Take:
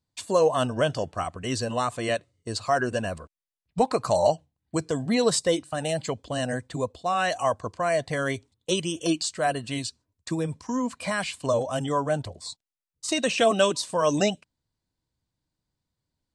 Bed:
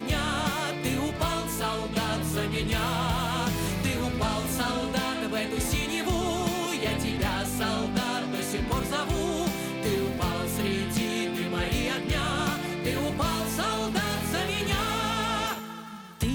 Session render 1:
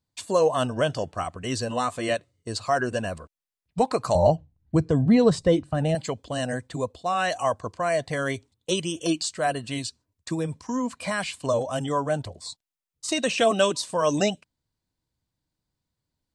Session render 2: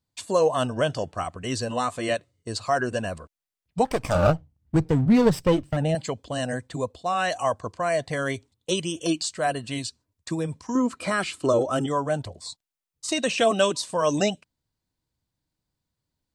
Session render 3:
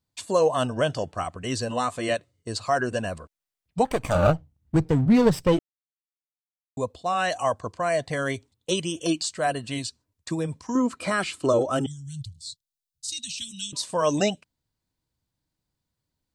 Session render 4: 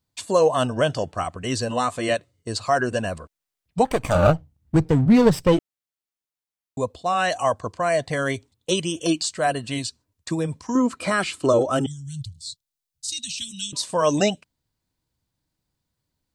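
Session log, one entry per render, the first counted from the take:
1.7–2.13 doubler 12 ms -8 dB; 4.15–5.95 RIAA curve playback
3.85–5.77 minimum comb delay 0.36 ms; 10.75–11.86 small resonant body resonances 350/1300 Hz, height 15 dB, ringing for 35 ms
3.82–4.34 notch 5200 Hz, Q 5; 5.59–6.77 mute; 11.86–13.73 elliptic band-stop 140–3700 Hz, stop band 80 dB
gain +3 dB

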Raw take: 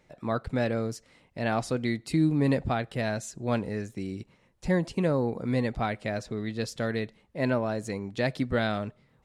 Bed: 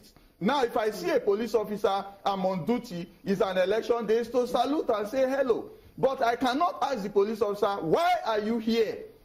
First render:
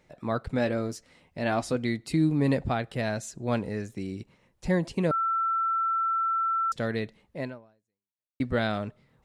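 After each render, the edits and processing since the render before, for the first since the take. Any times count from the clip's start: 0.56–1.76 doubler 12 ms -8 dB; 5.11–6.72 bleep 1340 Hz -23.5 dBFS; 7.37–8.4 fade out exponential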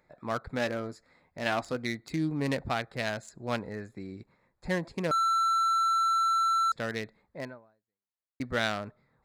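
Wiener smoothing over 15 samples; tilt shelf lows -7.5 dB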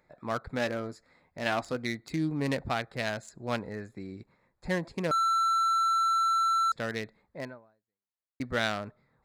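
nothing audible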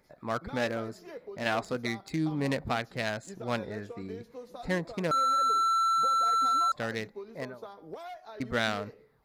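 add bed -18.5 dB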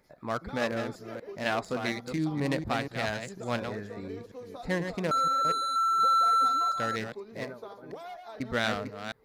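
reverse delay 0.24 s, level -7 dB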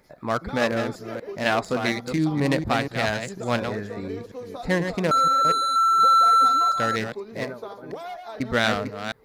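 gain +7 dB

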